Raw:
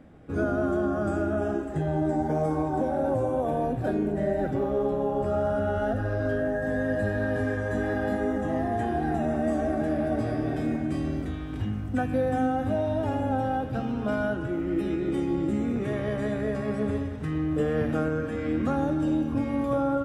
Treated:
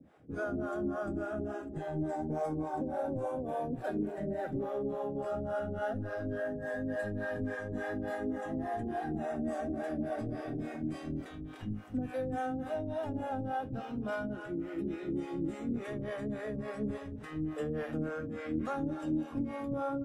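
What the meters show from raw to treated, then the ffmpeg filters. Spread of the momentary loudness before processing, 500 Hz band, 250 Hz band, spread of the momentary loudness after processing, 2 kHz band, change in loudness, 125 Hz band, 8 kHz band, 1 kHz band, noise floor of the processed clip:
3 LU, −9.0 dB, −9.0 dB, 4 LU, −8.0 dB, −9.0 dB, −11.0 dB, can't be measured, −8.0 dB, −45 dBFS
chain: -filter_complex "[0:a]highpass=74,acrossover=split=160|3700[link_01][link_02][link_03];[link_01]aeval=exprs='clip(val(0),-1,0.00562)':channel_layout=same[link_04];[link_04][link_02][link_03]amix=inputs=3:normalize=0,acrossover=split=440[link_05][link_06];[link_05]aeval=exprs='val(0)*(1-1/2+1/2*cos(2*PI*3.5*n/s))':channel_layout=same[link_07];[link_06]aeval=exprs='val(0)*(1-1/2-1/2*cos(2*PI*3.5*n/s))':channel_layout=same[link_08];[link_07][link_08]amix=inputs=2:normalize=0,volume=-3.5dB"

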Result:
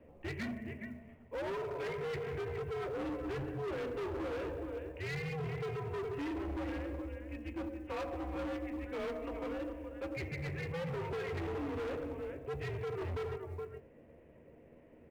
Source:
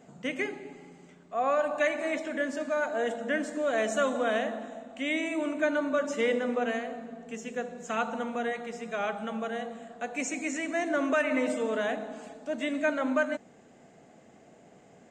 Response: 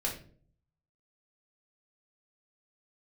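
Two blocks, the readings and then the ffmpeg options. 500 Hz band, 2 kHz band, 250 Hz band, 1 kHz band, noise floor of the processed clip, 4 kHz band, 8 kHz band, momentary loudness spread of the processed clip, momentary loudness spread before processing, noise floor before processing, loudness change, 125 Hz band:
−9.0 dB, −13.5 dB, −8.5 dB, −11.5 dB, −59 dBFS, −10.5 dB, below −15 dB, 7 LU, 11 LU, −57 dBFS, −9.5 dB, +12.0 dB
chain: -filter_complex "[0:a]highpass=frequency=260:width_type=q:width=0.5412,highpass=frequency=260:width_type=q:width=1.307,lowpass=frequency=2700:width_type=q:width=0.5176,lowpass=frequency=2700:width_type=q:width=0.7071,lowpass=frequency=2700:width_type=q:width=1.932,afreqshift=-170,equalizer=frequency=1400:width=2:gain=-12,bandreject=frequency=50:width_type=h:width=6,bandreject=frequency=100:width_type=h:width=6,bandreject=frequency=150:width_type=h:width=6,bandreject=frequency=200:width_type=h:width=6,bandreject=frequency=250:width_type=h:width=6,bandreject=frequency=300:width_type=h:width=6,asplit=2[link_01][link_02];[link_02]adelay=13,volume=-8dB[link_03];[link_01][link_03]amix=inputs=2:normalize=0,asplit=2[link_04][link_05];[1:a]atrim=start_sample=2205,adelay=25[link_06];[link_05][link_06]afir=irnorm=-1:irlink=0,volume=-23dB[link_07];[link_04][link_07]amix=inputs=2:normalize=0,alimiter=limit=-21.5dB:level=0:latency=1:release=405,aecho=1:1:172|419:0.1|0.299,acrusher=bits=9:mode=log:mix=0:aa=0.000001,volume=34.5dB,asoftclip=hard,volume=-34.5dB,volume=-1.5dB"

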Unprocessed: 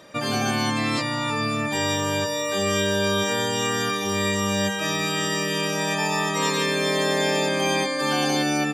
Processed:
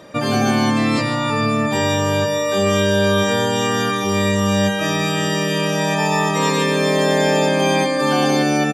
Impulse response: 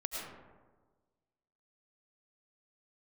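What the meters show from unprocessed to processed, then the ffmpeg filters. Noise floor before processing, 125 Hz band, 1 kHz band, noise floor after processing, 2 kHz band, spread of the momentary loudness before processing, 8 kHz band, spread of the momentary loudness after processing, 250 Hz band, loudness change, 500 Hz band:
−27 dBFS, +8.0 dB, +5.5 dB, −21 dBFS, +3.5 dB, 3 LU, +1.5 dB, 3 LU, +7.5 dB, +5.5 dB, +7.0 dB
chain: -filter_complex "[0:a]tiltshelf=frequency=1200:gain=3.5,aecho=1:1:140:0.251[link_01];[1:a]atrim=start_sample=2205,atrim=end_sample=3087[link_02];[link_01][link_02]afir=irnorm=-1:irlink=0,acontrast=89"

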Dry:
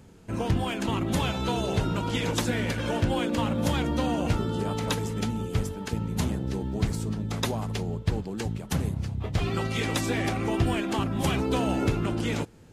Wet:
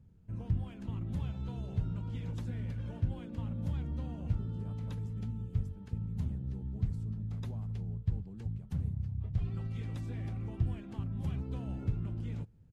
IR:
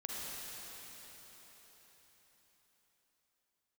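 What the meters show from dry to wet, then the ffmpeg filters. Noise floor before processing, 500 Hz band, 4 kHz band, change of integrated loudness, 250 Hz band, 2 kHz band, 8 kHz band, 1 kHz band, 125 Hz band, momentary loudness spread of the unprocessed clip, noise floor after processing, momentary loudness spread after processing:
−41 dBFS, −21.5 dB, below −25 dB, −9.5 dB, −13.5 dB, below −20 dB, below −25 dB, −23.5 dB, −5.5 dB, 5 LU, −49 dBFS, 4 LU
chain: -af "firequalizer=gain_entry='entry(110,0);entry(310,-16);entry(750,-19);entry(6800,-25)':delay=0.05:min_phase=1,volume=-4.5dB"

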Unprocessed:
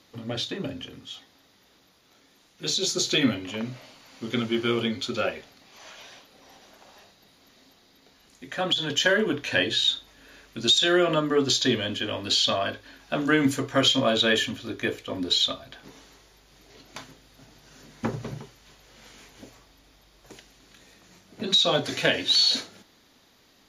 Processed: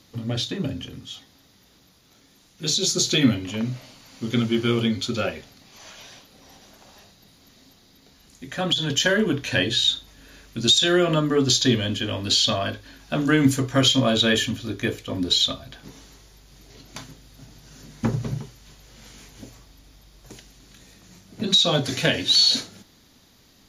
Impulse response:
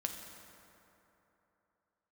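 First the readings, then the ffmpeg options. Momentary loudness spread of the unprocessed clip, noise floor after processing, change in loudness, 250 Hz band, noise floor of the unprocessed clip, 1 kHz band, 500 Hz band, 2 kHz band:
18 LU, −57 dBFS, +3.0 dB, +4.5 dB, −60 dBFS, 0.0 dB, +1.0 dB, +0.5 dB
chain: -af "bass=frequency=250:gain=10,treble=frequency=4000:gain=6"

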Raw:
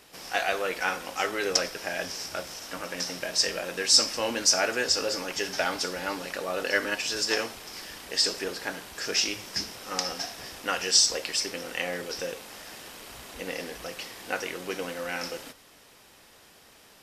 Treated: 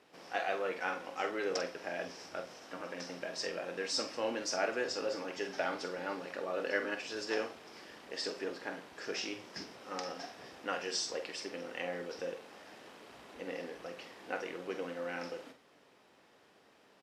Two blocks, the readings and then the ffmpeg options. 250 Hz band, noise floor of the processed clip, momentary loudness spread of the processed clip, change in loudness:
−5.5 dB, −65 dBFS, 12 LU, −11.0 dB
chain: -filter_complex "[0:a]highpass=310,aemphasis=mode=reproduction:type=riaa,asplit=2[link_01][link_02];[link_02]adelay=46,volume=-9dB[link_03];[link_01][link_03]amix=inputs=2:normalize=0,volume=-7.5dB"

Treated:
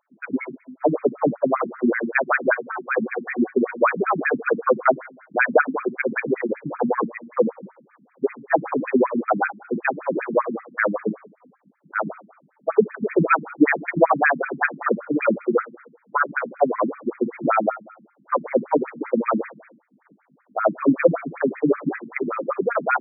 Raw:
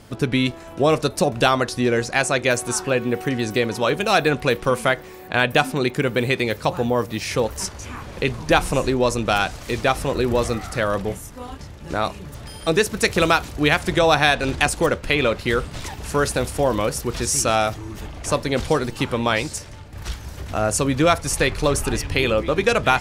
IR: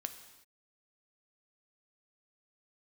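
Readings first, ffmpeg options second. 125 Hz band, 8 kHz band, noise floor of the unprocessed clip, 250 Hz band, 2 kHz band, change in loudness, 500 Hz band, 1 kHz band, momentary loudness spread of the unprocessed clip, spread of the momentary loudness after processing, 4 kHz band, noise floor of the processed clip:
−11.0 dB, below −40 dB, −39 dBFS, 0.0 dB, −1.5 dB, −2.0 dB, −1.0 dB, −1.0 dB, 11 LU, 9 LU, below −40 dB, −63 dBFS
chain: -filter_complex "[0:a]agate=range=-22dB:threshold=-24dB:ratio=16:detection=peak,highpass=frequency=47:poles=1,asoftclip=type=tanh:threshold=-7.5dB,highshelf=frequency=4000:gain=-3.5,dynaudnorm=framelen=140:gausssize=17:maxgain=4dB,acrossover=split=1700[link_01][link_02];[link_01]aeval=exprs='val(0)*(1-0.5/2+0.5/2*cos(2*PI*4.7*n/s))':channel_layout=same[link_03];[link_02]aeval=exprs='val(0)*(1-0.5/2-0.5/2*cos(2*PI*4.7*n/s))':channel_layout=same[link_04];[link_03][link_04]amix=inputs=2:normalize=0,bandreject=frequency=116.6:width_type=h:width=4,bandreject=frequency=233.2:width_type=h:width=4,bandreject=frequency=349.8:width_type=h:width=4,bandreject=frequency=466.4:width_type=h:width=4,bandreject=frequency=583:width_type=h:width=4,bandreject=frequency=699.6:width_type=h:width=4,bandreject=frequency=816.2:width_type=h:width=4,bandreject=frequency=932.8:width_type=h:width=4,bandreject=frequency=1049.4:width_type=h:width=4,bandreject=frequency=1166:width_type=h:width=4,bandreject=frequency=1282.6:width_type=h:width=4,bandreject=frequency=1399.2:width_type=h:width=4,bandreject=frequency=1515.8:width_type=h:width=4,bandreject=frequency=1632.4:width_type=h:width=4,bandreject=frequency=1749:width_type=h:width=4,bandreject=frequency=1865.6:width_type=h:width=4,bandreject=frequency=1982.2:width_type=h:width=4,bandreject=frequency=2098.8:width_type=h:width=4,bandreject=frequency=2215.4:width_type=h:width=4,bandreject=frequency=2332:width_type=h:width=4,bandreject=frequency=2448.6:width_type=h:width=4,bandreject=frequency=2565.2:width_type=h:width=4,bandreject=frequency=2681.8:width_type=h:width=4,bandreject=frequency=2798.4:width_type=h:width=4,bandreject=frequency=2915:width_type=h:width=4,aeval=exprs='val(0)+0.00282*(sin(2*PI*50*n/s)+sin(2*PI*2*50*n/s)/2+sin(2*PI*3*50*n/s)/3+sin(2*PI*4*50*n/s)/4+sin(2*PI*5*50*n/s)/5)':channel_layout=same,asplit=2[link_05][link_06];[1:a]atrim=start_sample=2205,lowshelf=frequency=230:gain=9[link_07];[link_06][link_07]afir=irnorm=-1:irlink=0,volume=-5.5dB[link_08];[link_05][link_08]amix=inputs=2:normalize=0,afftfilt=real='re*between(b*sr/1024,210*pow(1800/210,0.5+0.5*sin(2*PI*5.2*pts/sr))/1.41,210*pow(1800/210,0.5+0.5*sin(2*PI*5.2*pts/sr))*1.41)':imag='im*between(b*sr/1024,210*pow(1800/210,0.5+0.5*sin(2*PI*5.2*pts/sr))/1.41,210*pow(1800/210,0.5+0.5*sin(2*PI*5.2*pts/sr))*1.41)':win_size=1024:overlap=0.75,volume=3dB"

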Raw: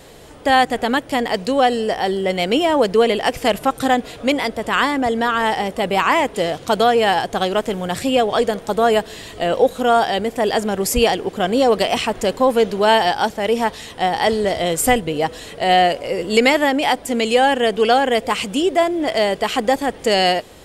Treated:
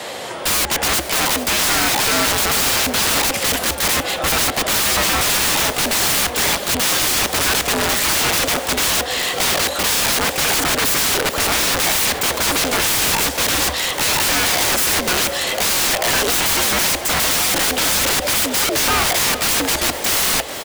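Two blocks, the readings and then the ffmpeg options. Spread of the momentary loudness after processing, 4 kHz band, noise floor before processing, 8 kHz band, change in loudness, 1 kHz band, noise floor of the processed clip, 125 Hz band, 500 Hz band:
3 LU, +6.5 dB, −39 dBFS, +15.0 dB, +2.5 dB, −4.5 dB, −27 dBFS, +2.5 dB, −8.0 dB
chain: -filter_complex "[0:a]asplit=2[link_01][link_02];[link_02]highpass=frequency=720:poles=1,volume=18dB,asoftclip=type=tanh:threshold=-2dB[link_03];[link_01][link_03]amix=inputs=2:normalize=0,lowpass=frequency=5800:poles=1,volume=-6dB,asplit=2[link_04][link_05];[link_05]acompressor=threshold=-22dB:ratio=6,volume=-2dB[link_06];[link_04][link_06]amix=inputs=2:normalize=0,afreqshift=67,aeval=exprs='(mod(4.22*val(0)+1,2)-1)/4.22':channel_layout=same,aecho=1:1:442|884|1326|1768:0.188|0.081|0.0348|0.015"

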